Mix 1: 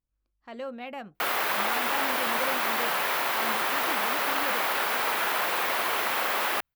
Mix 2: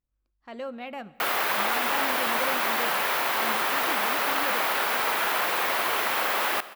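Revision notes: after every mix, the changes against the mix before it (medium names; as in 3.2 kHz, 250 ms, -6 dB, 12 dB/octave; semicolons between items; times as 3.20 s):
reverb: on, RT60 1.8 s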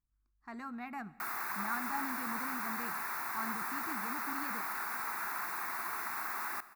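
background -10.5 dB; master: add static phaser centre 1.3 kHz, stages 4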